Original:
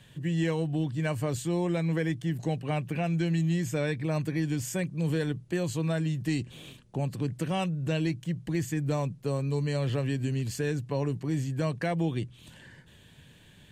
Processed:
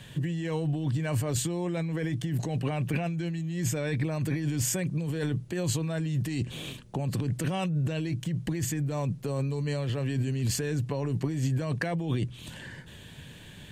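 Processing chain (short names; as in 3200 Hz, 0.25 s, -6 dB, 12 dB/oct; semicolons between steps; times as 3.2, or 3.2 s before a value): negative-ratio compressor -33 dBFS, ratio -1; gain +4 dB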